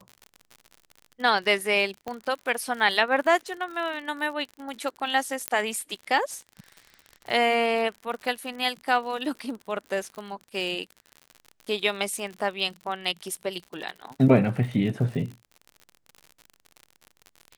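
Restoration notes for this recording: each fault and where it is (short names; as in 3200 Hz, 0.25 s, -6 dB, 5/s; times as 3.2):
crackle 62/s -34 dBFS
2.08 pop -20 dBFS
5.48 pop -9 dBFS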